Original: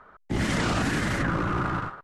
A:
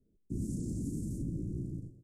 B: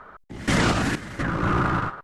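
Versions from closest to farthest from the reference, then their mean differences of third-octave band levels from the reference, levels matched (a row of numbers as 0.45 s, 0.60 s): B, A; 4.5 dB, 16.0 dB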